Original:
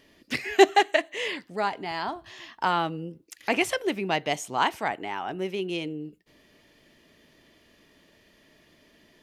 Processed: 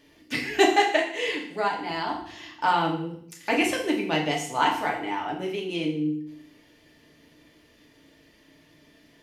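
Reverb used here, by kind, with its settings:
feedback delay network reverb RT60 0.6 s, low-frequency decay 1.35×, high-frequency decay 1×, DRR −1.5 dB
level −2.5 dB

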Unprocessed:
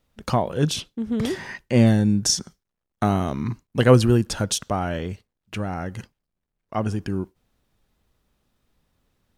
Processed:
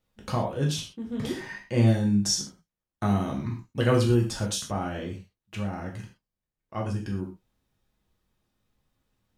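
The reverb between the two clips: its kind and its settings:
reverb whose tail is shaped and stops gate 150 ms falling, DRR −1 dB
level −9 dB

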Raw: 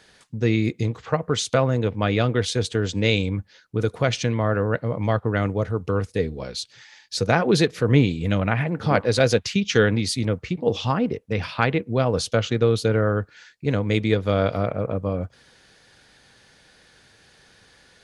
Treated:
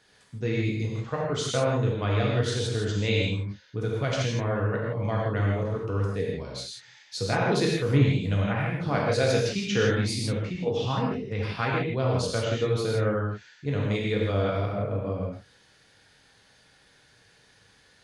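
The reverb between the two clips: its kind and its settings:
reverb whose tail is shaped and stops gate 190 ms flat, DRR −3.5 dB
level −9.5 dB

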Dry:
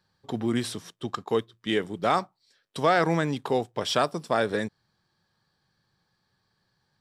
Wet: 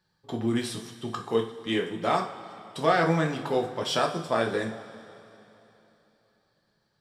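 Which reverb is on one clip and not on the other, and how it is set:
coupled-rooms reverb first 0.39 s, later 3.3 s, from −18 dB, DRR 0.5 dB
level −3.5 dB

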